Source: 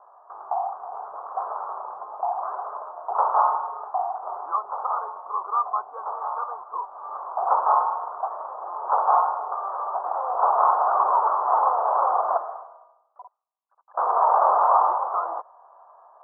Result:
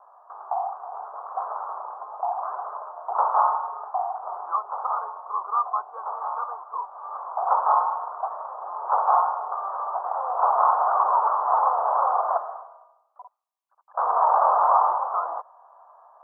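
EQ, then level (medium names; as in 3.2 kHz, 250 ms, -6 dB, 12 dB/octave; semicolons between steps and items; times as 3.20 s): high-pass 510 Hz 12 dB/octave; 0.0 dB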